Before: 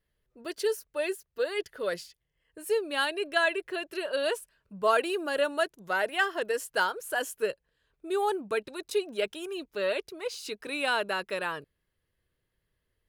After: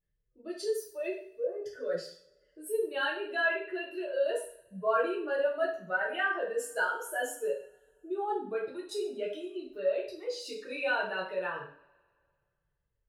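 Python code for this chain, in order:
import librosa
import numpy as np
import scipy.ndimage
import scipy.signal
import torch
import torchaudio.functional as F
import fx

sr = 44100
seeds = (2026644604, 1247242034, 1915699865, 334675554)

y = fx.spec_expand(x, sr, power=1.7)
y = fx.gaussian_blur(y, sr, sigma=8.4, at=(1.12, 1.64))
y = fx.rev_double_slope(y, sr, seeds[0], early_s=0.48, late_s=2.0, knee_db=-27, drr_db=-5.0)
y = F.gain(torch.from_numpy(y), -8.5).numpy()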